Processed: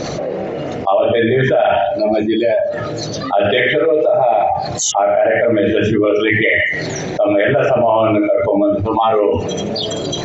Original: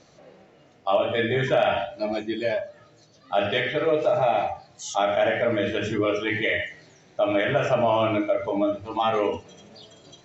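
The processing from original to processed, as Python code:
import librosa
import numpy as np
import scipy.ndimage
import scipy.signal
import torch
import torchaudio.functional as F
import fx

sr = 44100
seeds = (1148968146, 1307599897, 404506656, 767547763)

y = fx.envelope_sharpen(x, sr, power=1.5)
y = fx.steep_lowpass(y, sr, hz=2900.0, slope=96, at=(4.9, 5.4), fade=0.02)
y = fx.env_flatten(y, sr, amount_pct=70)
y = y * 10.0 ** (6.0 / 20.0)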